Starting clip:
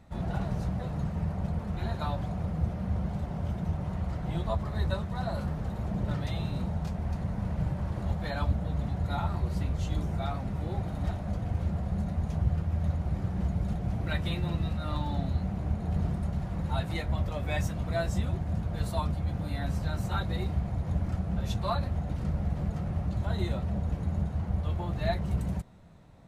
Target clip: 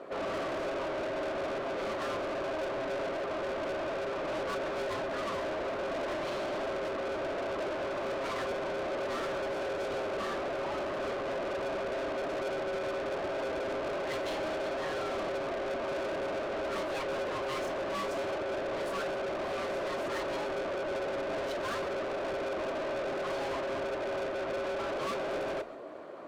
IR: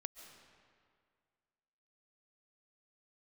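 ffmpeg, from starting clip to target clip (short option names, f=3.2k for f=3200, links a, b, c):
-filter_complex "[0:a]highshelf=f=2.8k:g=-11.5,aeval=exprs='val(0)*sin(2*PI*470*n/s)':c=same,flanger=delay=0.2:depth=6.8:regen=-72:speed=1.2:shape=sinusoidal,asplit=2[a][b];[b]highpass=f=720:p=1,volume=37dB,asoftclip=type=tanh:threshold=-19dB[c];[a][c]amix=inputs=2:normalize=0,lowpass=f=5.5k:p=1,volume=-6dB[d];[1:a]atrim=start_sample=2205,atrim=end_sample=6174[e];[d][e]afir=irnorm=-1:irlink=0,volume=-4dB"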